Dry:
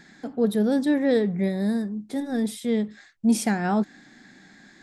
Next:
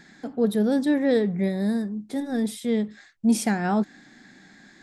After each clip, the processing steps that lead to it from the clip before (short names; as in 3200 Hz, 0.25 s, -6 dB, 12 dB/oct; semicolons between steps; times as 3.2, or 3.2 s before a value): nothing audible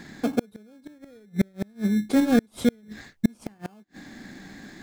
in parallel at -3.5 dB: sample-and-hold 23×; on the sum: flipped gate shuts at -13 dBFS, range -38 dB; gain +4.5 dB